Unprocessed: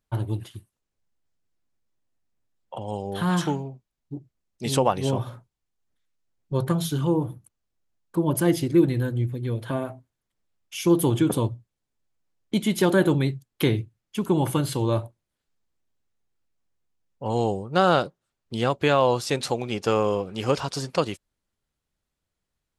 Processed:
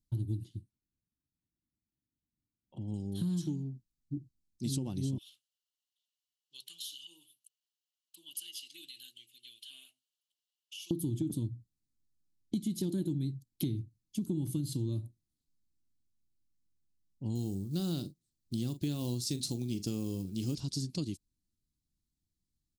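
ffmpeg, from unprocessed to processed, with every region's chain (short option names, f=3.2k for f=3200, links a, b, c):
-filter_complex "[0:a]asettb=1/sr,asplit=3[a][b][c];[a]atrim=end=0.454[d];[b]atrim=start=0.45:end=2.94,asetpts=PTS-STARTPTS,afade=t=in:d=0.004:c=qsin,afade=t=out:st=2.486:d=0.004:c=qsin,highpass=f=470:p=1,aemphasis=mode=reproduction:type=riaa[e];[c]atrim=start=2.936[f];[d][e]acrossfade=d=0.004:c1=hsin:c2=qsin[g];[g][f]acrossfade=d=0.004:c1=qsin:c2=hsin,asettb=1/sr,asplit=3[h][i][j];[h]atrim=end=5.184[k];[i]atrim=start=5.18:end=10.91,asetpts=PTS-STARTPTS,afade=t=in:d=0.004:c=qsin,afade=t=out:st=5.726:d=0.004:c=qsin,highpass=f=2.9k:t=q:w=13,acompressor=threshold=-32dB:ratio=3:attack=3.2:release=140:knee=1:detection=peak[l];[j]atrim=start=10.906[m];[k][l]acrossfade=d=0.004:c1=hsin:c2=qsin[n];[n][m]acrossfade=d=0.004:c1=qsin:c2=hsin,asettb=1/sr,asplit=3[o][p][q];[o]atrim=end=17.354[r];[p]atrim=start=17.35:end=20.55,asetpts=PTS-STARTPTS,afade=t=in:d=0.004:c=qsin,afade=t=out:st=3.196:d=0.004:c=qsin,acrusher=bits=7:mode=log:mix=0:aa=0.000001,highshelf=f=5.5k:g=5,asplit=2[s][t];[t]adelay=41,volume=-13dB[u];[s][u]amix=inputs=2:normalize=0,atrim=end_sample=141120[v];[q]atrim=start=20.546[w];[r][v]acrossfade=d=0.004:c1=hsin:c2=qsin[x];[x][w]acrossfade=d=0.004:c1=qsin:c2=hsin,firequalizer=gain_entry='entry(310,0);entry(480,-23);entry(1300,-30);entry(4100,-3)':delay=0.05:min_phase=1,acompressor=threshold=-29dB:ratio=6,volume=-1.5dB"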